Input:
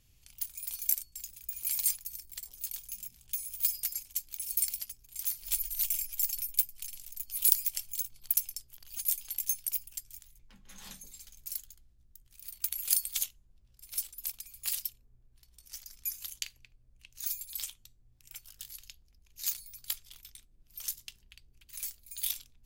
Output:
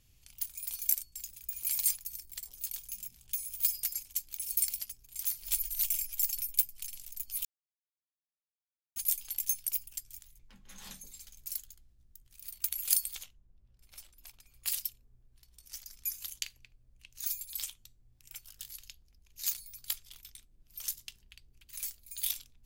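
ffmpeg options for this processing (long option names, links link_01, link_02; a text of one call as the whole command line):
ffmpeg -i in.wav -filter_complex "[0:a]asettb=1/sr,asplit=3[link_01][link_02][link_03];[link_01]atrim=end=13.154[link_04];[link_02]atrim=start=13.15:end=14.66,asetpts=PTS-STARTPTS,afade=type=in:duration=0.004:curve=qsin,afade=type=out:start_time=1.506:duration=0.004:curve=qsin,lowpass=frequency=1400:poles=1[link_05];[link_03]atrim=start=14.656[link_06];[link_04][link_05]acrossfade=duration=0.004:curve1=hsin:curve2=qsin[link_07];[link_07][link_06]acrossfade=duration=0.004:curve1=qsin:curve2=hsin,asplit=3[link_08][link_09][link_10];[link_08]atrim=end=7.45,asetpts=PTS-STARTPTS,afade=type=out:start_time=7.446:duration=0.004:curve=hsin[link_11];[link_09]atrim=start=7.45:end=8.96,asetpts=PTS-STARTPTS,volume=0[link_12];[link_10]atrim=start=8.96,asetpts=PTS-STARTPTS,afade=type=in:duration=0.004:curve=hsin[link_13];[link_11][link_12][link_13]concat=n=3:v=0:a=1" out.wav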